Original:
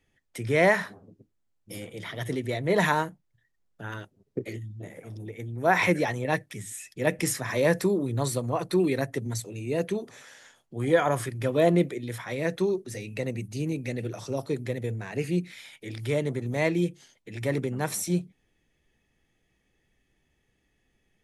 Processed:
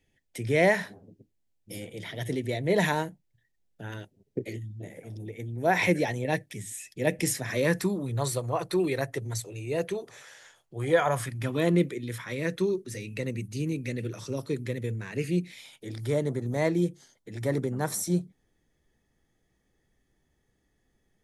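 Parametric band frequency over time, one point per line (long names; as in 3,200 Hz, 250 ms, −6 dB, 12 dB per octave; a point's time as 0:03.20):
parametric band −11.5 dB 0.59 octaves
0:07.41 1,200 Hz
0:08.25 230 Hz
0:10.91 230 Hz
0:11.75 730 Hz
0:15.16 730 Hz
0:15.91 2,600 Hz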